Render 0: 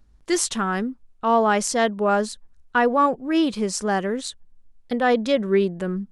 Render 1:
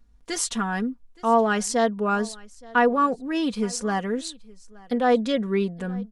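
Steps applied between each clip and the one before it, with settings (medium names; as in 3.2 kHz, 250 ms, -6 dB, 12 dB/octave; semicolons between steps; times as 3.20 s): comb 4.2 ms, depth 63%; delay 871 ms -23.5 dB; trim -4 dB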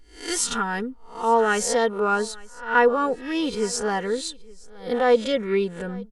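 reverse spectral sustain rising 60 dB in 0.41 s; comb 2.2 ms, depth 46%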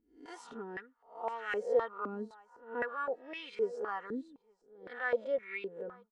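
step-sequenced band-pass 3.9 Hz 260–2200 Hz; trim -3.5 dB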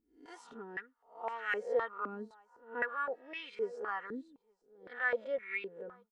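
dynamic bell 1.9 kHz, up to +8 dB, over -51 dBFS, Q 0.86; trim -4 dB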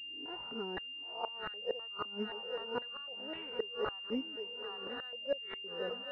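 shuffle delay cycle 1040 ms, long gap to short 3:1, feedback 45%, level -16 dB; inverted gate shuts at -29 dBFS, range -24 dB; class-D stage that switches slowly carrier 2.8 kHz; trim +6.5 dB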